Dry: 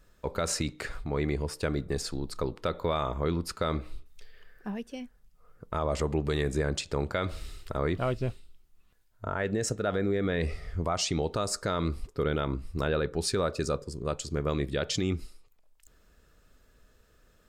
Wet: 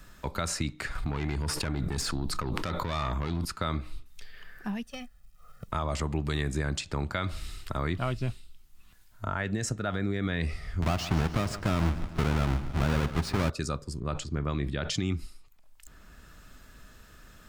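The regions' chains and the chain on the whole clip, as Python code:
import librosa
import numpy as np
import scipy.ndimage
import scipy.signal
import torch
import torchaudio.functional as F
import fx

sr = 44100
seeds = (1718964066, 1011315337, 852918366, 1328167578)

y = fx.chain(x, sr, fx.tube_stage(drive_db=27.0, bias=0.25),
    fx.env_flatten(amount_pct=100), at=(0.95, 3.45))
y = fx.chain(y, sr, fx.law_mismatch(coded='A'),
    fx.notch(hz=1000.0, q=8.2),
    fx.comb(ms=1.6, depth=0.91), at=(4.83, 5.68))
y = fx.chain(y, sr, fx.halfwave_hold(),
    fx.lowpass(hz=1500.0, slope=6),
    fx.echo_feedback(ms=145, feedback_pct=47, wet_db=-14.5), at=(10.82, 13.5))
y = fx.chain(y, sr, fx.lowpass(hz=2000.0, slope=6),
    fx.sustainer(db_per_s=100.0), at=(14.0, 14.9))
y = fx.peak_eq(y, sr, hz=470.0, db=-11.0, octaves=0.77)
y = fx.band_squash(y, sr, depth_pct=40)
y = y * 10.0 ** (1.0 / 20.0)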